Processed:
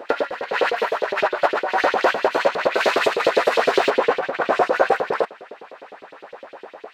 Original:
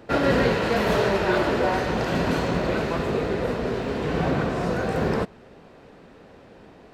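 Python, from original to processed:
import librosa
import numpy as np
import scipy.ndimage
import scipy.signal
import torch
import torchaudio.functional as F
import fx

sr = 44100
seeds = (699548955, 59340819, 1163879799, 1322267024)

y = fx.high_shelf(x, sr, hz=2700.0, db=fx.steps((0.0, -8.5), (2.74, 2.5), (3.89, -10.5)))
y = fx.over_compress(y, sr, threshold_db=-26.0, ratio=-0.5)
y = fx.filter_lfo_highpass(y, sr, shape='saw_up', hz=9.8, low_hz=390.0, high_hz=4100.0, q=2.5)
y = y * 10.0 ** (8.0 / 20.0)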